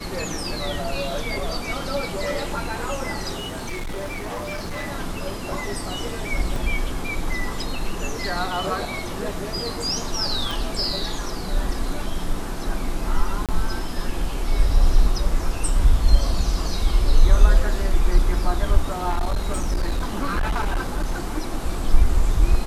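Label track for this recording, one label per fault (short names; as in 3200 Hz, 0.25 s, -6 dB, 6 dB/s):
3.370000	4.870000	clipped -25.5 dBFS
6.560000	6.560000	gap 2.3 ms
10.510000	10.510000	pop
13.460000	13.490000	gap 27 ms
19.090000	21.150000	clipped -18 dBFS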